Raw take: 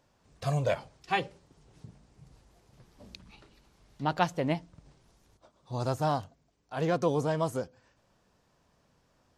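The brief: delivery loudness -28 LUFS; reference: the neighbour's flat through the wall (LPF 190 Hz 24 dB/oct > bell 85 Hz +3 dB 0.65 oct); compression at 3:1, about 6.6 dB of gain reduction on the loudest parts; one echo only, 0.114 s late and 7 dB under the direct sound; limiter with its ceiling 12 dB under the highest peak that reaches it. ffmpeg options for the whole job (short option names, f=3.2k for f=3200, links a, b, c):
-af "acompressor=threshold=-31dB:ratio=3,alimiter=level_in=6.5dB:limit=-24dB:level=0:latency=1,volume=-6.5dB,lowpass=f=190:w=0.5412,lowpass=f=190:w=1.3066,equalizer=f=85:t=o:w=0.65:g=3,aecho=1:1:114:0.447,volume=18.5dB"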